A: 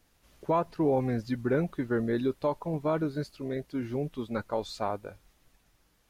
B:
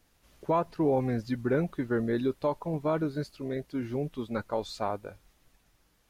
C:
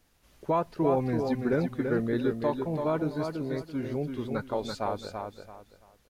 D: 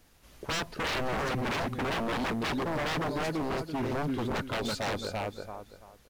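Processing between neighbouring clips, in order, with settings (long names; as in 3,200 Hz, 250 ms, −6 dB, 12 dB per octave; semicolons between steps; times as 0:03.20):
no processing that can be heard
repeating echo 335 ms, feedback 27%, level −5.5 dB
wave folding −31.5 dBFS; level +5.5 dB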